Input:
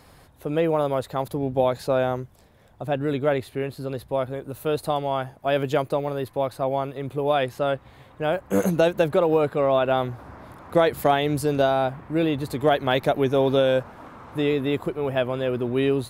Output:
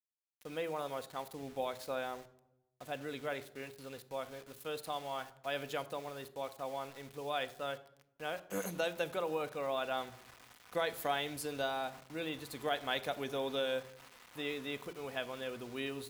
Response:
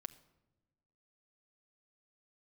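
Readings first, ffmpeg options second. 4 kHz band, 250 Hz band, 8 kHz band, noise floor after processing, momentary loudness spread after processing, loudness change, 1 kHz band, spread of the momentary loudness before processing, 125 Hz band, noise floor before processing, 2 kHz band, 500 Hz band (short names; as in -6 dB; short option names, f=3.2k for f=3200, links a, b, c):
-8.0 dB, -19.0 dB, -6.5 dB, -74 dBFS, 11 LU, -15.5 dB, -14.0 dB, 10 LU, -22.5 dB, -53 dBFS, -9.5 dB, -17.0 dB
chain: -filter_complex "[0:a]aeval=exprs='val(0)*gte(abs(val(0)),0.0119)':c=same,tiltshelf=f=870:g=-7[a];[1:a]atrim=start_sample=2205,asetrate=61740,aresample=44100[b];[a][b]afir=irnorm=-1:irlink=0,volume=-6.5dB"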